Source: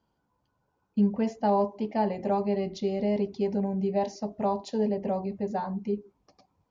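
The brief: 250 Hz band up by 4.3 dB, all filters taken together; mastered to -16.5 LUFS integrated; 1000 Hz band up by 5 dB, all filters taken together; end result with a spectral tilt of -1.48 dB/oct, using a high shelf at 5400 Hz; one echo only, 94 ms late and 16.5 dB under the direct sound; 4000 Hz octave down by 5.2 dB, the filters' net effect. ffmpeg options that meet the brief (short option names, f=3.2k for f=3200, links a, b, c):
-af "equalizer=f=250:t=o:g=5.5,equalizer=f=1k:t=o:g=6.5,equalizer=f=4k:t=o:g=-4.5,highshelf=f=5.4k:g=-6.5,aecho=1:1:94:0.15,volume=8.5dB"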